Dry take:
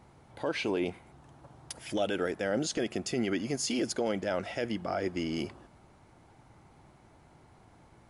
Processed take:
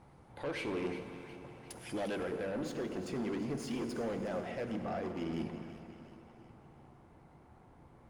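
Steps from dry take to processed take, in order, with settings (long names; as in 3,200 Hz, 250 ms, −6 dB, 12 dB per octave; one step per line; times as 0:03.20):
notch filter 630 Hz, Q 20
tape wow and flutter 21 cents
mains-hum notches 50/100/150/200/250/300/350/400/450 Hz
gain into a clipping stage and back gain 30.5 dB
echo with a time of its own for lows and highs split 1,100 Hz, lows 127 ms, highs 359 ms, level −13 dB
soft clipping −31 dBFS, distortion −19 dB
high-shelf EQ 2,800 Hz −5 dB, from 0:02.23 −11.5 dB
convolution reverb RT60 4.0 s, pre-delay 3 ms, DRR 6 dB
Opus 32 kbit/s 48,000 Hz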